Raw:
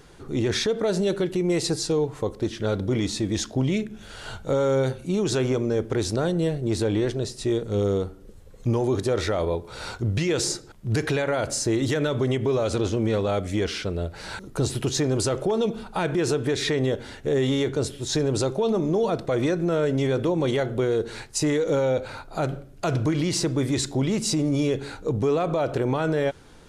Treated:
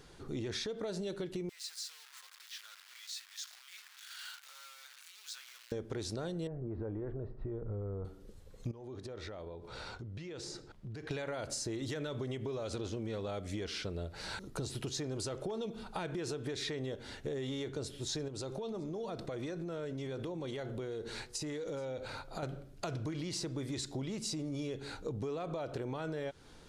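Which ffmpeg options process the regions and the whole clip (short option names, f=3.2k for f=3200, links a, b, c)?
-filter_complex "[0:a]asettb=1/sr,asplit=3[a][b][c];[a]atrim=end=1.494[d];[b]atrim=start=1.49:end=5.72,asetpts=PTS-STARTPTS,afade=t=in:d=0.004:c=qsin,afade=t=out:st=4.226:d=0.004:c=qsin,acompressor=threshold=-33dB:ratio=6:attack=3.2:release=140:knee=1:detection=peak,acrusher=bits=8:dc=4:mix=0:aa=0.000001,highpass=f=1.3k:w=0.5412,highpass=f=1.3k:w=1.3066[e];[c]atrim=start=5.716[f];[d][e]acrossfade=d=0.004:c1=hsin:c2=qsin[g];[g][f]acrossfade=d=0.004:c1=qsin:c2=hsin,asettb=1/sr,asplit=3[h][i][j];[h]atrim=end=6.474[k];[i]atrim=start=6.47:end=8.05,asetpts=PTS-STARTPTS,afade=t=in:d=0.004:c=qsin,afade=t=out:st=1.576:d=0.004:c=qsin,lowpass=f=1.4k:w=0.5412,lowpass=f=1.4k:w=1.3066,acompressor=threshold=-26dB:ratio=2.5:attack=3.2:release=140:knee=1:detection=peak,asubboost=boost=8.5:cutoff=100[l];[j]atrim=start=8.046[m];[k][l]acrossfade=d=0.004:c1=hsin:c2=qsin[n];[n][m]acrossfade=d=0.004:c1=qsin:c2=hsin,asettb=1/sr,asplit=3[o][p][q];[o]atrim=end=8.714[r];[p]atrim=start=8.71:end=11.11,asetpts=PTS-STARTPTS,afade=t=in:d=0.004:c=qsin,afade=t=out:st=2.396:d=0.004:c=qsin,aemphasis=mode=reproduction:type=50kf,acompressor=threshold=-34dB:ratio=16:attack=3.2:release=140:knee=1:detection=peak[s];[q]atrim=start=11.106[t];[r][s]acrossfade=d=0.004:c1=hsin:c2=qsin[u];[u][t]acrossfade=d=0.004:c1=qsin:c2=hsin,asettb=1/sr,asplit=3[v][w][x];[v]atrim=end=18.284[y];[w]atrim=start=18.28:end=22.43,asetpts=PTS-STARTPTS,afade=t=in:d=0.004:c=qsin,afade=t=out:st=4.146:d=0.004:c=qsin,acompressor=threshold=-29dB:ratio=4:attack=3.2:release=140:knee=1:detection=peak,aecho=1:1:424:0.0631,atrim=end_sample=183015[z];[x]atrim=start=22.426[aa];[y][z]acrossfade=d=0.004:c1=hsin:c2=qsin[ab];[ab][aa]acrossfade=d=0.004:c1=qsin:c2=hsin,equalizer=f=4.4k:t=o:w=0.94:g=4,acompressor=threshold=-29dB:ratio=6,volume=-7dB"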